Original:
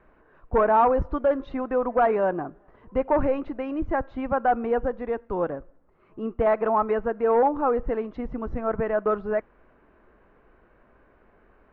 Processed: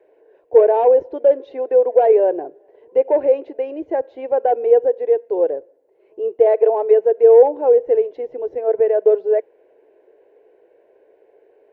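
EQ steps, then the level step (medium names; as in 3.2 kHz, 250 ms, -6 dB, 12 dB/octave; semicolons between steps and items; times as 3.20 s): high-pass 320 Hz 12 dB/octave; peaking EQ 440 Hz +12.5 dB 0.82 oct; static phaser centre 510 Hz, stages 4; +2.0 dB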